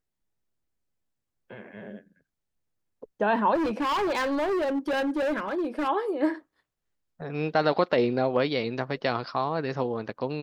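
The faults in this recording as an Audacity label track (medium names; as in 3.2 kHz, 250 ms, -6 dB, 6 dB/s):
3.540000	5.890000	clipped -24 dBFS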